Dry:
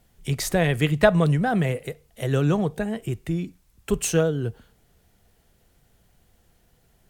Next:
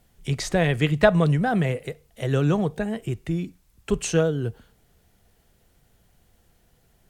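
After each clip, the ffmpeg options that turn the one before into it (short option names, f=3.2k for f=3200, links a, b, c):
-filter_complex "[0:a]acrossover=split=8100[a][b];[b]acompressor=threshold=-57dB:ratio=4:attack=1:release=60[c];[a][c]amix=inputs=2:normalize=0"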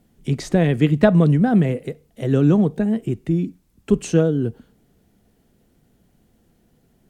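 -af "equalizer=f=250:t=o:w=1.7:g=14,volume=-3.5dB"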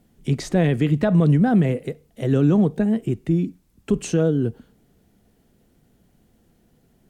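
-af "alimiter=limit=-9.5dB:level=0:latency=1:release=30"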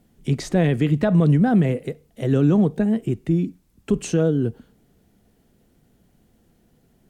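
-af anull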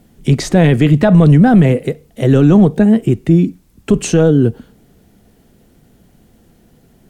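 -af "apsyclip=13dB,volume=-2.5dB"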